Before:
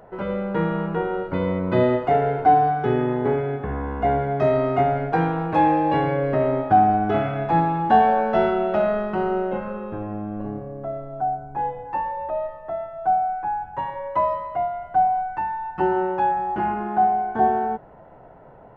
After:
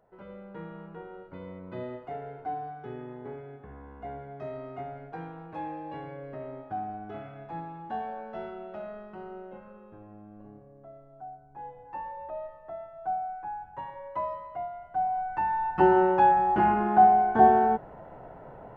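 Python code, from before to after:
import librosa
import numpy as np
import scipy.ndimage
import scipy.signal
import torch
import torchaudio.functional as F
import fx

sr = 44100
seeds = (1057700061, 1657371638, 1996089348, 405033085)

y = fx.gain(x, sr, db=fx.line((11.43, -19.0), (12.06, -11.0), (14.95, -11.0), (15.59, 1.0)))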